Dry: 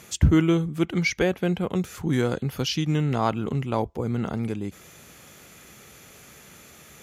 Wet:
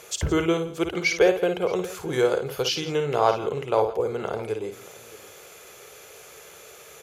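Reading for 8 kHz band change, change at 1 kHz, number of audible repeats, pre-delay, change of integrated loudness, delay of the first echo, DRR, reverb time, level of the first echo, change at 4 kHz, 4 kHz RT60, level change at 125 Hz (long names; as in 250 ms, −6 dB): +2.0 dB, +4.0 dB, 3, no reverb audible, +0.5 dB, 55 ms, no reverb audible, no reverb audible, −7.5 dB, +2.5 dB, no reverb audible, −9.5 dB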